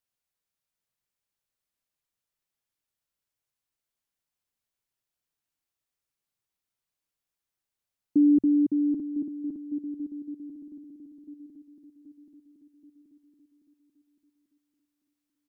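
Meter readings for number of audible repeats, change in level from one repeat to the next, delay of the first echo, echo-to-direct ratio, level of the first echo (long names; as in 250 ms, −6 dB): 5, −4.5 dB, 779 ms, −12.0 dB, −14.0 dB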